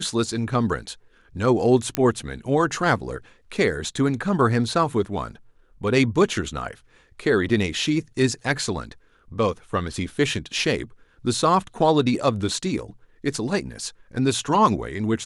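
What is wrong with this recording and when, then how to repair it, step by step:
1.95 pop -6 dBFS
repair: de-click

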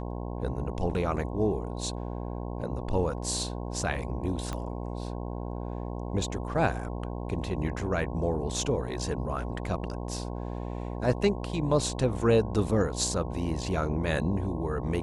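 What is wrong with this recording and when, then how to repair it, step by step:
buzz 60 Hz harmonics 18 -35 dBFS
4.53 pop -20 dBFS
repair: de-click; de-hum 60 Hz, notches 18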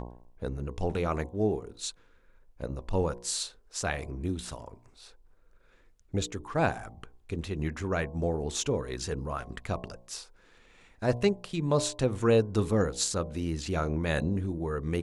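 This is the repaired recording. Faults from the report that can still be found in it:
4.53 pop

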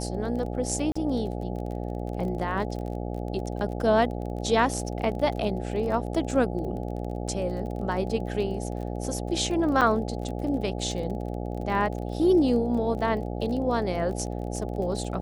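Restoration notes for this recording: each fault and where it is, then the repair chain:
buzz 60 Hz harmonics 14 -32 dBFS
crackle 26/s -34 dBFS
0.92–0.95 gap 35 ms
9.81–9.82 gap 5.4 ms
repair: de-click; de-hum 60 Hz, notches 14; interpolate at 0.92, 35 ms; interpolate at 9.81, 5.4 ms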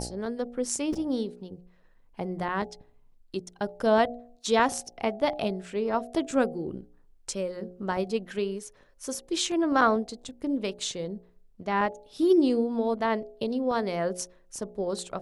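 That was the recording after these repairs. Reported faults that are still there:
none

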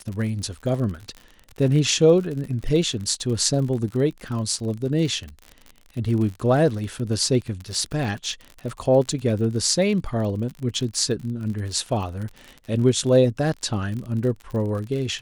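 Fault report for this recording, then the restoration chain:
crackle 50/s -30 dBFS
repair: de-click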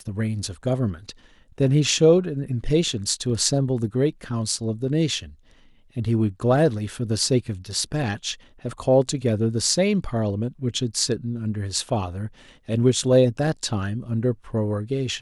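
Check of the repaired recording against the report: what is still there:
none

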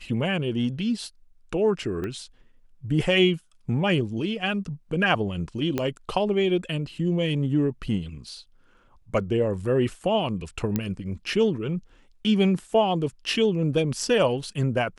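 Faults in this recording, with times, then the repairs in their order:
2.04 pop -20 dBFS
5.78 pop -12 dBFS
10.76 pop -11 dBFS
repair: de-click

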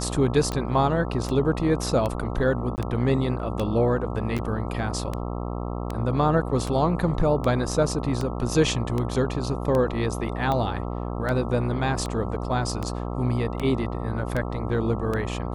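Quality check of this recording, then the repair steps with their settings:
buzz 60 Hz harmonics 22 -30 dBFS
tick 78 rpm -15 dBFS
2.76–2.78 gap 19 ms
4.38–4.39 gap 7.7 ms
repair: de-click; de-hum 60 Hz, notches 22; interpolate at 2.76, 19 ms; interpolate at 4.38, 7.7 ms

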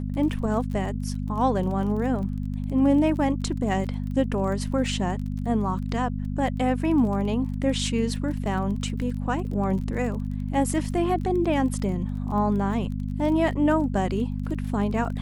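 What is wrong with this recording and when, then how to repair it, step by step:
crackle 31/s -34 dBFS
hum 50 Hz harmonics 5 -29 dBFS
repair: de-click; de-hum 50 Hz, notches 5

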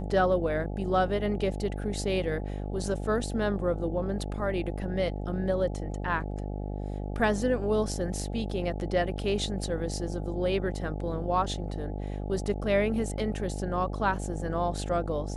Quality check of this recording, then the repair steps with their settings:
buzz 50 Hz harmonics 17 -34 dBFS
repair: de-hum 50 Hz, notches 17

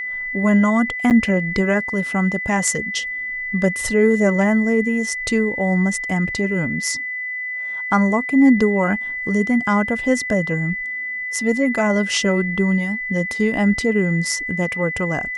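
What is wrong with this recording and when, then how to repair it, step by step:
tone 2000 Hz -24 dBFS
1.1–1.11 gap 8.5 ms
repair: notch 2000 Hz, Q 30; interpolate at 1.1, 8.5 ms

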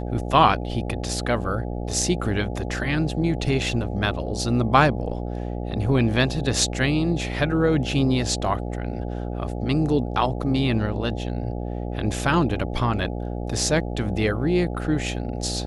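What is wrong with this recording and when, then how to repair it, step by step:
buzz 60 Hz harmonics 14 -29 dBFS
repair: de-hum 60 Hz, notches 14

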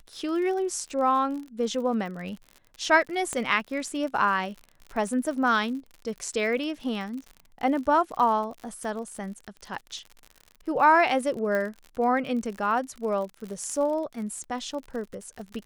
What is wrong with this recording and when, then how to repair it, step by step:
crackle 60/s -35 dBFS
3.33 pop -17 dBFS
11.55 pop -17 dBFS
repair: de-click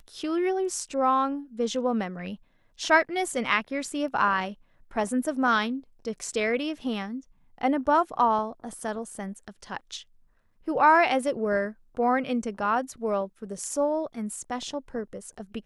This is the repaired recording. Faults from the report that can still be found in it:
none

